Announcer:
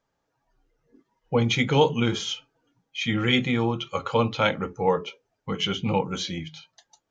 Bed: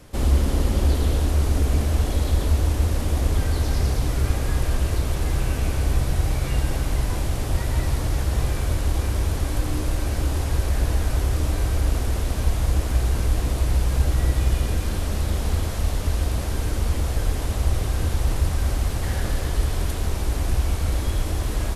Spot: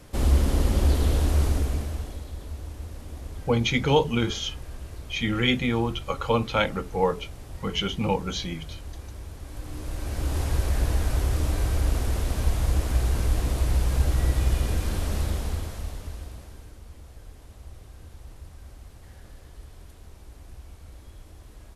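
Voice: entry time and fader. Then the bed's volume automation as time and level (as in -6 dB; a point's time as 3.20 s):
2.15 s, -1.0 dB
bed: 1.44 s -1.5 dB
2.28 s -16.5 dB
9.39 s -16.5 dB
10.40 s -2.5 dB
15.21 s -2.5 dB
16.80 s -22.5 dB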